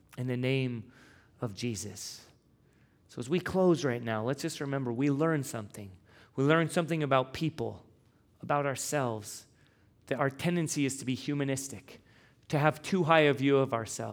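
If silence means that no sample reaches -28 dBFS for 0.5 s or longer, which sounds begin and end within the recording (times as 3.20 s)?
1.42–1.81 s
3.18–5.61 s
6.38–7.68 s
8.50–9.17 s
10.11–11.64 s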